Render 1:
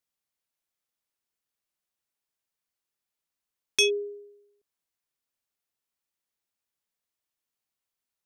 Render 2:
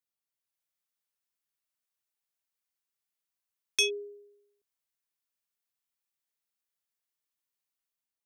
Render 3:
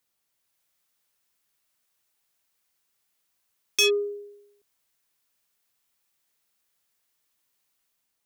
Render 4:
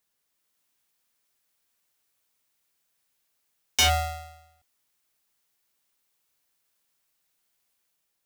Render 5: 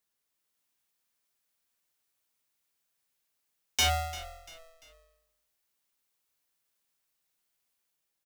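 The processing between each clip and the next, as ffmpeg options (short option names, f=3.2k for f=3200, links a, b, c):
-filter_complex "[0:a]highshelf=f=11k:g=4.5,acrossover=split=500|840[a][b][c];[c]dynaudnorm=f=120:g=7:m=4.5dB[d];[a][b][d]amix=inputs=3:normalize=0,volume=-8dB"
-filter_complex "[0:a]asplit=2[a][b];[b]alimiter=limit=-21dB:level=0:latency=1,volume=-1.5dB[c];[a][c]amix=inputs=2:normalize=0,asoftclip=type=tanh:threshold=-24.5dB,volume=8dB"
-af "aeval=exprs='val(0)*sgn(sin(2*PI*330*n/s))':c=same"
-filter_complex "[0:a]asplit=4[a][b][c][d];[b]adelay=344,afreqshift=-43,volume=-17dB[e];[c]adelay=688,afreqshift=-86,volume=-24.7dB[f];[d]adelay=1032,afreqshift=-129,volume=-32.5dB[g];[a][e][f][g]amix=inputs=4:normalize=0,volume=-5dB"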